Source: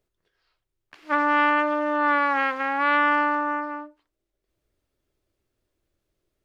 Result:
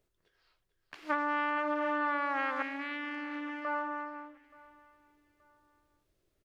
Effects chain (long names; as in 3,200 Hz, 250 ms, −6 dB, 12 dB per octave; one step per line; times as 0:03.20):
single-tap delay 443 ms −11.5 dB
downward compressor 5 to 1, threshold −28 dBFS, peak gain reduction 12.5 dB
0:02.62–0:03.65: flat-topped bell 920 Hz −13.5 dB
repeating echo 876 ms, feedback 32%, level −23 dB